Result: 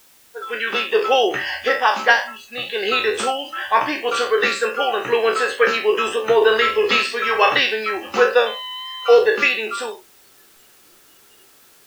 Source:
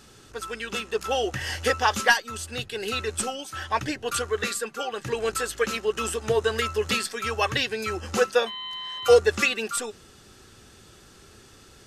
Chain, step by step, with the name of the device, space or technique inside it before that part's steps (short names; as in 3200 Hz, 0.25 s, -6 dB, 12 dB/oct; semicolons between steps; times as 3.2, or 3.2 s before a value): spectral trails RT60 0.42 s; dictaphone (BPF 360–3500 Hz; AGC gain up to 12 dB; wow and flutter 21 cents; white noise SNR 16 dB); spectral noise reduction 16 dB; 6.37–7.6 doubler 46 ms -8 dB; gain -1 dB